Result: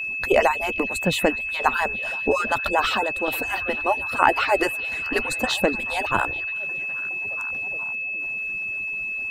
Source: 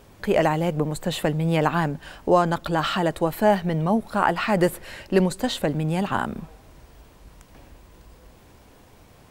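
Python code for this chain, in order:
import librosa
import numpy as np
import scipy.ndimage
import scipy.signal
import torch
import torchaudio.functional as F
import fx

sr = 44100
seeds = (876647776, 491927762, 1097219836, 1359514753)

y = fx.hpss_only(x, sr, part='percussive')
y = fx.chopper(y, sr, hz=0.61, depth_pct=60, duty_pct=85)
y = fx.echo_stepped(y, sr, ms=418, hz=3400.0, octaves=-0.7, feedback_pct=70, wet_db=-11)
y = y + 10.0 ** (-30.0 / 20.0) * np.sin(2.0 * np.pi * 2600.0 * np.arange(len(y)) / sr)
y = F.gain(torch.from_numpy(y), 4.0).numpy()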